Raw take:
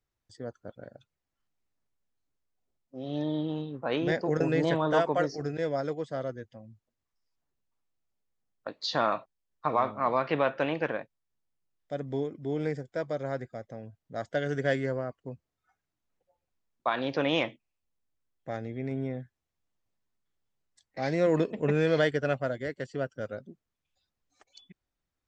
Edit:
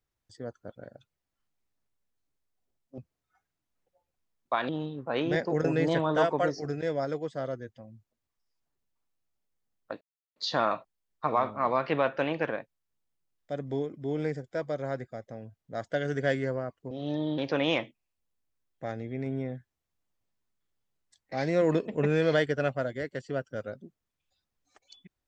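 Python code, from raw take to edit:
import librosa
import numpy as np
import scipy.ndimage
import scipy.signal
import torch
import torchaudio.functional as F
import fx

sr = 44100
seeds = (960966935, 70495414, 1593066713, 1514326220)

y = fx.edit(x, sr, fx.swap(start_s=2.98, length_s=0.47, other_s=15.32, other_length_s=1.71),
    fx.insert_silence(at_s=8.77, length_s=0.35), tone=tone)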